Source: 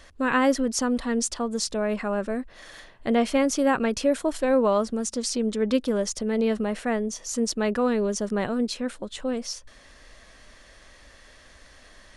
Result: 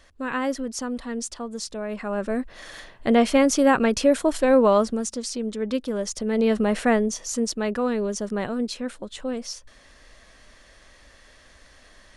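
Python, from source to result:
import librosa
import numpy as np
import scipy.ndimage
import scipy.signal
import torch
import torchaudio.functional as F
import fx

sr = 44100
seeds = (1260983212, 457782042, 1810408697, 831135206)

y = fx.gain(x, sr, db=fx.line((1.88, -5.0), (2.41, 4.0), (4.82, 4.0), (5.26, -3.0), (5.89, -3.0), (6.84, 7.0), (7.56, -1.0)))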